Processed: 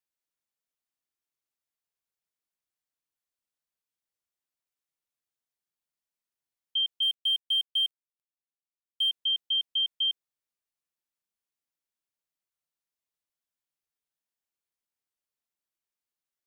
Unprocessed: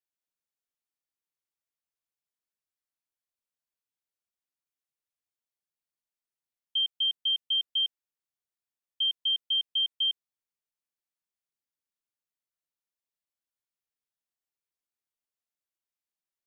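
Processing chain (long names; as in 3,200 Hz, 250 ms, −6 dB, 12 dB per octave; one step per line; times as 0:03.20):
0:07.02–0:09.10: mu-law and A-law mismatch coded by mu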